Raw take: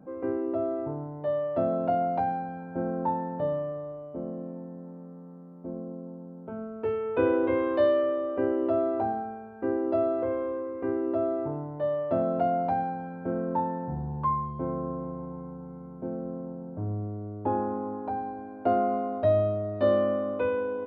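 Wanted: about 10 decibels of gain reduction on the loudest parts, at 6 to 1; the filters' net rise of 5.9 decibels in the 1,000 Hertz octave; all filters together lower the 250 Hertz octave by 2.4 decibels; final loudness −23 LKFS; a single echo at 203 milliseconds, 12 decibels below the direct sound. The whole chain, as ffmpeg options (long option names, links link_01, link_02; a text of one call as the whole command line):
ffmpeg -i in.wav -af "equalizer=frequency=250:width_type=o:gain=-4,equalizer=frequency=1000:width_type=o:gain=8.5,acompressor=threshold=-27dB:ratio=6,aecho=1:1:203:0.251,volume=9dB" out.wav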